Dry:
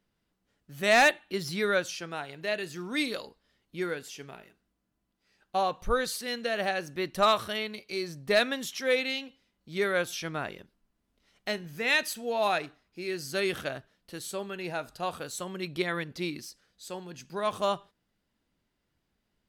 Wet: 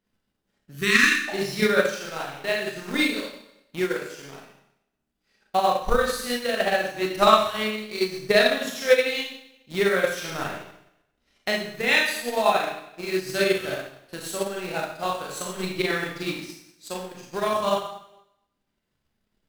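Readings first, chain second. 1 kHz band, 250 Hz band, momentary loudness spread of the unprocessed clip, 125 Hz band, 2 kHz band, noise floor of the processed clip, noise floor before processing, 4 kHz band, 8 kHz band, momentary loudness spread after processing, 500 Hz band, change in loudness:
+5.5 dB, +6.5 dB, 16 LU, +4.5 dB, +6.0 dB, −78 dBFS, −79 dBFS, +5.5 dB, +5.0 dB, 16 LU, +6.5 dB, +6.0 dB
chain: in parallel at −5.5 dB: bit-depth reduction 6 bits, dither none
on the sum: four-comb reverb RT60 0.86 s, combs from 29 ms, DRR −4.5 dB
healed spectral selection 0:00.77–0:01.26, 420–1,000 Hz before
transient designer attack +8 dB, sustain −5 dB
level −5 dB

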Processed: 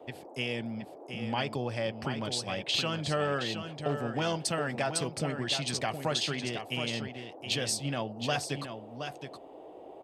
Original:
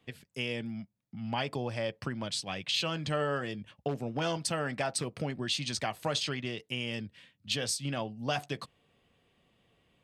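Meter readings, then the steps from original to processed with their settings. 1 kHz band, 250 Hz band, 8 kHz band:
+2.0 dB, +1.5 dB, +1.5 dB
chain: noise in a band 280–790 Hz −50 dBFS
on a send: single-tap delay 720 ms −8 dB
on the sum: level +1 dB

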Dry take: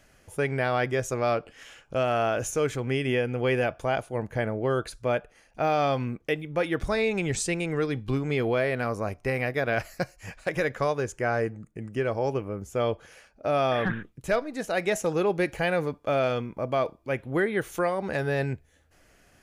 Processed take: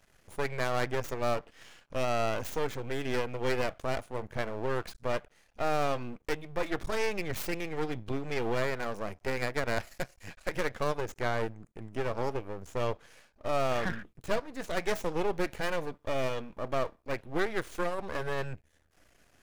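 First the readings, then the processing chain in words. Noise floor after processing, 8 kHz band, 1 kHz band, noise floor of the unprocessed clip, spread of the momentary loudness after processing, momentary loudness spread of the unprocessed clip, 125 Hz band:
−68 dBFS, −7.5 dB, −4.5 dB, −62 dBFS, 7 LU, 7 LU, −8.0 dB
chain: stylus tracing distortion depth 0.26 ms
half-wave rectification
level −1.5 dB

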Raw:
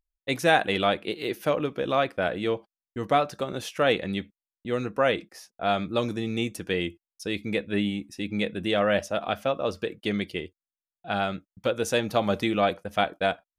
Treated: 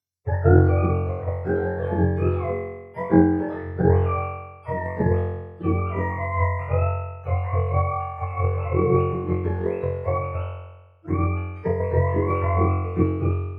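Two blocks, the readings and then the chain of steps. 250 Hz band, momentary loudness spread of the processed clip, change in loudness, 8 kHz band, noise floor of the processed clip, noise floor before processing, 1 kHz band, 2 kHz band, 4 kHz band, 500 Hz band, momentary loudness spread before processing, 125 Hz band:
+4.5 dB, 10 LU, +4.0 dB, below −25 dB, −44 dBFS, below −85 dBFS, +1.0 dB, −4.5 dB, below −25 dB, +2.0 dB, 9 LU, +15.0 dB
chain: frequency axis turned over on the octave scale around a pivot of 480 Hz
flutter between parallel walls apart 3.8 metres, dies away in 1.1 s
transient designer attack +6 dB, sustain +2 dB
level −3 dB

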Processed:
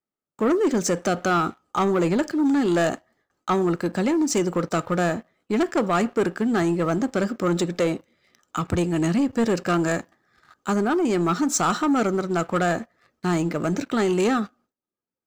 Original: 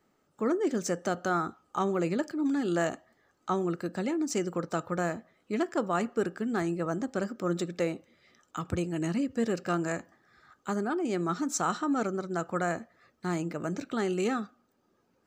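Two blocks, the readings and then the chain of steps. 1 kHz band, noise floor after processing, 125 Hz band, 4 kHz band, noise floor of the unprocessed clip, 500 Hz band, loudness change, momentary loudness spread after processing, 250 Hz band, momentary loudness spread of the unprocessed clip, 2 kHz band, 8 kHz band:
+7.5 dB, below −85 dBFS, +8.5 dB, +9.5 dB, −72 dBFS, +8.0 dB, +8.0 dB, 6 LU, +8.5 dB, 6 LU, +7.5 dB, +8.5 dB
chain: noise gate with hold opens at −58 dBFS
leveller curve on the samples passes 2
level +2.5 dB

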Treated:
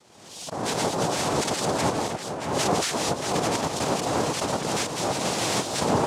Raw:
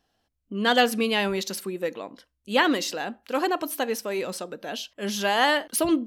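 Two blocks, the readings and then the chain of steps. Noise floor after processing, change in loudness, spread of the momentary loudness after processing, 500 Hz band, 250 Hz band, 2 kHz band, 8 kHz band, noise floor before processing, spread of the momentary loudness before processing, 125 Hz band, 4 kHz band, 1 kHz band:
−45 dBFS, −0.5 dB, 5 LU, 0.0 dB, −1.5 dB, −5.5 dB, +6.0 dB, −78 dBFS, 13 LU, +10.5 dB, −0.5 dB, +1.0 dB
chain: one scale factor per block 3 bits
Butterworth high-pass 220 Hz
low-shelf EQ 340 Hz +10 dB
reversed playback
downward compressor 6 to 1, threshold −30 dBFS, peak gain reduction 17.5 dB
reversed playback
cochlear-implant simulation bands 2
on a send: echo with a time of its own for lows and highs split 2,900 Hz, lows 629 ms, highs 214 ms, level −7 dB
on the sum: background raised ahead of every attack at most 53 dB per second
level +6.5 dB

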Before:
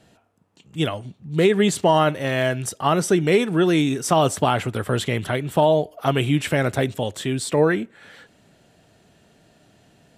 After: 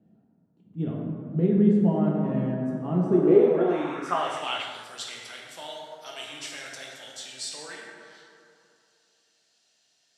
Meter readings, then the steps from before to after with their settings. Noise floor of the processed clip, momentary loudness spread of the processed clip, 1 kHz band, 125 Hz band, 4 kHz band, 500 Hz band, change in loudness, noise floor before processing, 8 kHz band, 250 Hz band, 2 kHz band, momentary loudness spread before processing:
−69 dBFS, 20 LU, −10.5 dB, −6.0 dB, −7.5 dB, −5.5 dB, −4.0 dB, −58 dBFS, −11.0 dB, −2.5 dB, −12.0 dB, 8 LU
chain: dense smooth reverb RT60 2.6 s, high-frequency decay 0.4×, DRR −3 dB
band-pass filter sweep 210 Hz → 5,300 Hz, 0:03.00–0:04.93
level −1 dB

